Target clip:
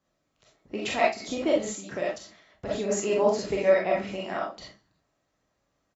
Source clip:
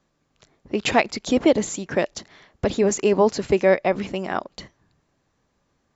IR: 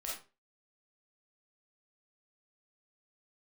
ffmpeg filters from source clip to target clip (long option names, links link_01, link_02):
-filter_complex "[0:a]highpass=50[link_01];[1:a]atrim=start_sample=2205,afade=type=out:start_time=0.18:duration=0.01,atrim=end_sample=8379[link_02];[link_01][link_02]afir=irnorm=-1:irlink=0,asplit=3[link_03][link_04][link_05];[link_03]afade=type=out:start_time=0.78:duration=0.02[link_06];[link_04]tremolo=f=4.7:d=0.45,afade=type=in:start_time=0.78:duration=0.02,afade=type=out:start_time=2.89:duration=0.02[link_07];[link_05]afade=type=in:start_time=2.89:duration=0.02[link_08];[link_06][link_07][link_08]amix=inputs=3:normalize=0,aecho=1:1:72|144|216:0.0944|0.0378|0.0151,volume=-4.5dB"